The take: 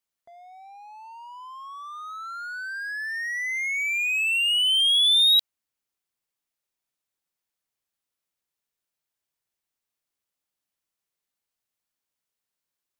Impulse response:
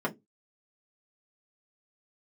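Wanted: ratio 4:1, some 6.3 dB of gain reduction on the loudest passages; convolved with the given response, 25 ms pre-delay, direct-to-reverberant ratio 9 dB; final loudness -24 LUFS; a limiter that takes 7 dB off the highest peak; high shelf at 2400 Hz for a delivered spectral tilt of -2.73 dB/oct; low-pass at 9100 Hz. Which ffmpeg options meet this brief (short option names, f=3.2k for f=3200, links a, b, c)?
-filter_complex "[0:a]lowpass=9.1k,highshelf=f=2.4k:g=-7.5,acompressor=threshold=-30dB:ratio=4,alimiter=level_in=9.5dB:limit=-24dB:level=0:latency=1,volume=-9.5dB,asplit=2[a][b];[1:a]atrim=start_sample=2205,adelay=25[c];[b][c]afir=irnorm=-1:irlink=0,volume=-17.5dB[d];[a][d]amix=inputs=2:normalize=0,volume=11.5dB"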